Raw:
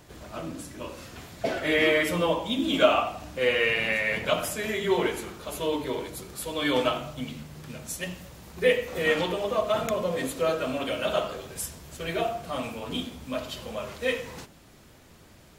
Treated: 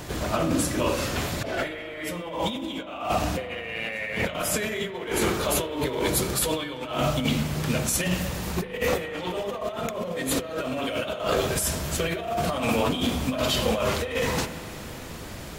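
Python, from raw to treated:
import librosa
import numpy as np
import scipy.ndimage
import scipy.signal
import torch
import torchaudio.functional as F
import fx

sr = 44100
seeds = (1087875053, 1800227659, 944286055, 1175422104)

y = fx.over_compress(x, sr, threshold_db=-37.0, ratio=-1.0)
y = fx.rev_spring(y, sr, rt60_s=3.4, pass_ms=(38,), chirp_ms=80, drr_db=11.5)
y = y * librosa.db_to_amplitude(8.0)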